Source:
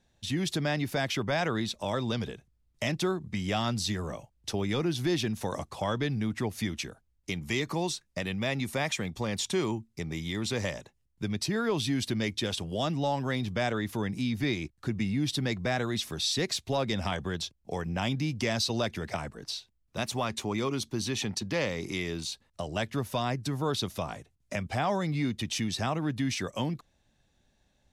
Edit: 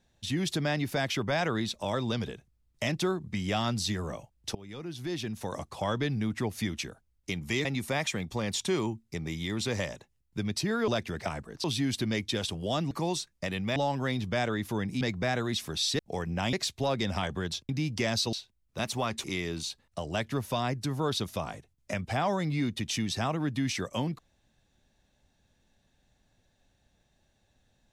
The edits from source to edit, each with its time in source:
4.55–5.89 fade in, from -20.5 dB
7.65–8.5 move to 13
14.25–15.44 cut
17.58–18.12 move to 16.42
18.76–19.52 move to 11.73
20.43–21.86 cut

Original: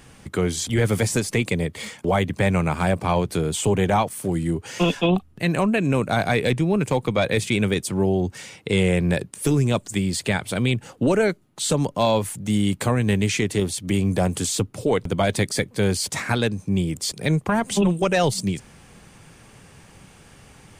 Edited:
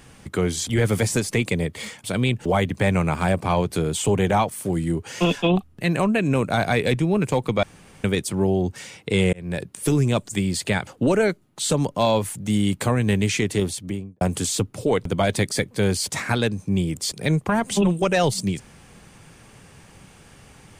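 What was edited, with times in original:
7.22–7.63 room tone
8.92–9.33 fade in
10.46–10.87 move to 2.04
13.65–14.21 studio fade out

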